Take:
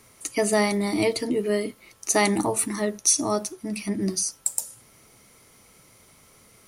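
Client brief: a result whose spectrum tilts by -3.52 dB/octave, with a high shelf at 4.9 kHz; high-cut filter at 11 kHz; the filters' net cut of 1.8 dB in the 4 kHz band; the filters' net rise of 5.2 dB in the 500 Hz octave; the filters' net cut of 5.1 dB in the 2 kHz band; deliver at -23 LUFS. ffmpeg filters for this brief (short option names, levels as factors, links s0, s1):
-af "lowpass=11000,equalizer=f=500:t=o:g=7,equalizer=f=2000:t=o:g=-5.5,equalizer=f=4000:t=o:g=-4.5,highshelf=f=4900:g=5,volume=0.891"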